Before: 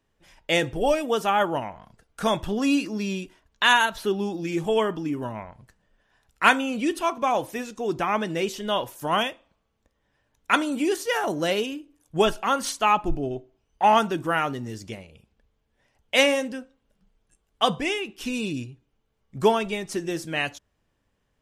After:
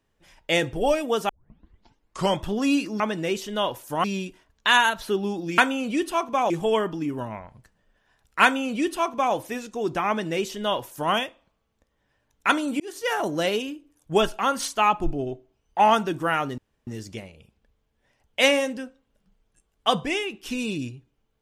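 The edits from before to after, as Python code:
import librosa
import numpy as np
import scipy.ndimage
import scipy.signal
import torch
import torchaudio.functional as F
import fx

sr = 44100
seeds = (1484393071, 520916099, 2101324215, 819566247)

y = fx.edit(x, sr, fx.tape_start(start_s=1.29, length_s=1.12),
    fx.duplicate(start_s=6.47, length_s=0.92, to_s=4.54),
    fx.duplicate(start_s=8.12, length_s=1.04, to_s=3.0),
    fx.fade_in_span(start_s=10.84, length_s=0.31),
    fx.insert_room_tone(at_s=14.62, length_s=0.29), tone=tone)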